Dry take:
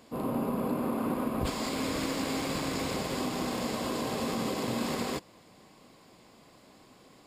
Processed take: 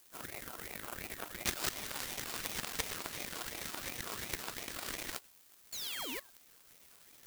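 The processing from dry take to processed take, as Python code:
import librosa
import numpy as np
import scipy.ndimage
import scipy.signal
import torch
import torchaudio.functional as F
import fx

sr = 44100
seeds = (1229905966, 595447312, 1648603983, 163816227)

p1 = fx.recorder_agc(x, sr, target_db=-29.0, rise_db_per_s=6.3, max_gain_db=30)
p2 = fx.spec_paint(p1, sr, seeds[0], shape='fall', start_s=5.72, length_s=0.48, low_hz=1100.0, high_hz=6000.0, level_db=-36.0)
p3 = fx.dereverb_blind(p2, sr, rt60_s=0.58)
p4 = fx.dmg_noise_colour(p3, sr, seeds[1], colour='blue', level_db=-45.0)
p5 = scipy.signal.sosfilt(scipy.signal.butter(8, 610.0, 'highpass', fs=sr, output='sos'), p4)
p6 = p5 + fx.echo_single(p5, sr, ms=105, db=-12.5, dry=0)
p7 = fx.power_curve(p6, sr, exponent=3.0)
p8 = fx.level_steps(p7, sr, step_db=17)
p9 = p7 + (p8 * librosa.db_to_amplitude(2.5))
p10 = fx.ring_lfo(p9, sr, carrier_hz=840.0, swing_pct=65, hz=2.8)
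y = p10 * librosa.db_to_amplitude(13.0)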